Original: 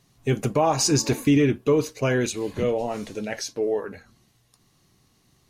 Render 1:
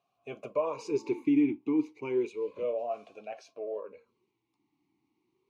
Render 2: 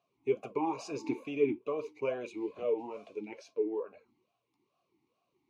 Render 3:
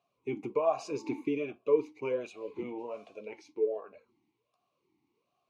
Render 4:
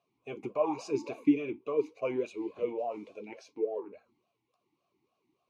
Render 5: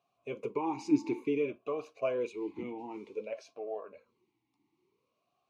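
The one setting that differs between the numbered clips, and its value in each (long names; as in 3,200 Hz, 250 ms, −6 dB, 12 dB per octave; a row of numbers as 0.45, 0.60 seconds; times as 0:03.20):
formant filter swept between two vowels, speed: 0.31, 2.3, 1.3, 3.5, 0.55 Hertz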